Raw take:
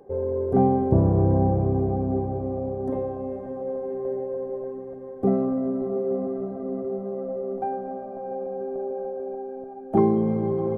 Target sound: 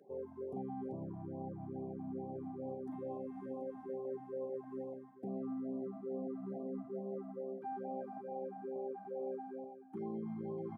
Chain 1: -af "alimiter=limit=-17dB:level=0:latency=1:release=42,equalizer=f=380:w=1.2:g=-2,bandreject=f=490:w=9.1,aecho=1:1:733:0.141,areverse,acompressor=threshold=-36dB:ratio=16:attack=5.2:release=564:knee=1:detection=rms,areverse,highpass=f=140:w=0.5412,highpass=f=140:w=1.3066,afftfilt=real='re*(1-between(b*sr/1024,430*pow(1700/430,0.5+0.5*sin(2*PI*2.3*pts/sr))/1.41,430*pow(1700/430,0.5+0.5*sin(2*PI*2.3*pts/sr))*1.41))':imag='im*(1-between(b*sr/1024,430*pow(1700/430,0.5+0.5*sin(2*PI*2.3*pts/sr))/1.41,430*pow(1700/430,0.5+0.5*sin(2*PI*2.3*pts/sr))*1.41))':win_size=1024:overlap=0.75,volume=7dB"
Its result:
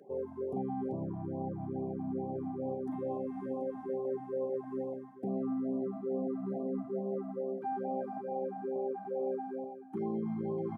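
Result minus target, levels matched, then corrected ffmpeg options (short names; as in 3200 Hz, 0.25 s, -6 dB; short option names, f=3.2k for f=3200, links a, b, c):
compressor: peak gain reduction -6.5 dB
-af "alimiter=limit=-17dB:level=0:latency=1:release=42,equalizer=f=380:w=1.2:g=-2,bandreject=f=490:w=9.1,aecho=1:1:733:0.141,areverse,acompressor=threshold=-43dB:ratio=16:attack=5.2:release=564:knee=1:detection=rms,areverse,highpass=f=140:w=0.5412,highpass=f=140:w=1.3066,afftfilt=real='re*(1-between(b*sr/1024,430*pow(1700/430,0.5+0.5*sin(2*PI*2.3*pts/sr))/1.41,430*pow(1700/430,0.5+0.5*sin(2*PI*2.3*pts/sr))*1.41))':imag='im*(1-between(b*sr/1024,430*pow(1700/430,0.5+0.5*sin(2*PI*2.3*pts/sr))/1.41,430*pow(1700/430,0.5+0.5*sin(2*PI*2.3*pts/sr))*1.41))':win_size=1024:overlap=0.75,volume=7dB"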